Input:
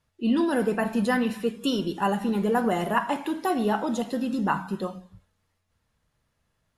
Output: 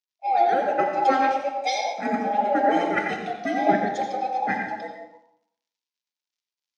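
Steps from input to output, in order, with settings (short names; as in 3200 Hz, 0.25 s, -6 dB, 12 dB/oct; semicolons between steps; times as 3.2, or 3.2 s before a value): band inversion scrambler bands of 1000 Hz; crackle 130/s -43 dBFS; Chebyshev band-pass 210–6000 Hz, order 3; reverb RT60 1.2 s, pre-delay 79 ms, DRR 1.5 dB; three-band expander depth 100%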